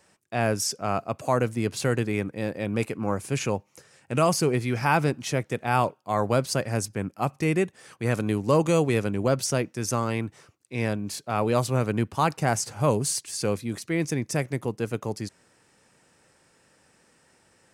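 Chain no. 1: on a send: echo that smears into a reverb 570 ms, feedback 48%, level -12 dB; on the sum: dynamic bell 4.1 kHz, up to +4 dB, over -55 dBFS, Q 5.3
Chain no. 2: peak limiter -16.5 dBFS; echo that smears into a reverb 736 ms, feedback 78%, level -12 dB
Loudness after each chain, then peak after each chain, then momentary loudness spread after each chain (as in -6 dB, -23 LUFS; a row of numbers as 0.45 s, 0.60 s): -26.0 LUFS, -29.0 LUFS; -7.0 dBFS, -14.0 dBFS; 9 LU, 11 LU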